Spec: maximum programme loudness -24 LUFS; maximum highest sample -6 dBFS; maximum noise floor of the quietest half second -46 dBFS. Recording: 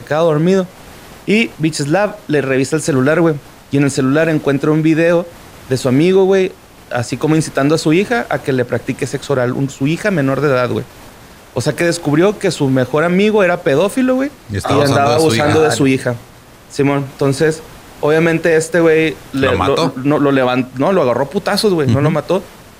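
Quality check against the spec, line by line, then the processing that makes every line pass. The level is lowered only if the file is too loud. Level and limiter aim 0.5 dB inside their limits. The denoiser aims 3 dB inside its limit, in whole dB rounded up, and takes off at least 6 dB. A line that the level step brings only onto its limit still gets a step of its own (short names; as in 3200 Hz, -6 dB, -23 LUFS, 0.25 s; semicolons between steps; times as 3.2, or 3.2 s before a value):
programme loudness -14.5 LUFS: fail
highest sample -2.5 dBFS: fail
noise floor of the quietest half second -40 dBFS: fail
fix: gain -10 dB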